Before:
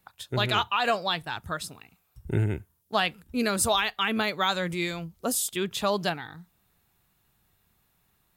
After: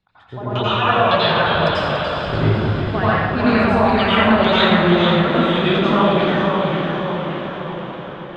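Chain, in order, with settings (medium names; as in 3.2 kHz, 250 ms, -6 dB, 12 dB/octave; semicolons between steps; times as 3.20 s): low-pass 11 kHz 24 dB/octave; LFO low-pass saw down 1.8 Hz 470–4400 Hz; tilt EQ -1.5 dB/octave; compression, threshold -24 dBFS, peak gain reduction 9 dB; dynamic bell 5.1 kHz, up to +4 dB, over -51 dBFS, Q 3; level rider gain up to 10.5 dB; echo that smears into a reverb 459 ms, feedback 60%, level -7 dB; plate-style reverb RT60 1.2 s, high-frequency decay 0.85×, pre-delay 75 ms, DRR -9.5 dB; ever faster or slower copies 186 ms, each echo -1 st, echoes 3, each echo -6 dB; endings held to a fixed fall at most 140 dB/s; trim -7.5 dB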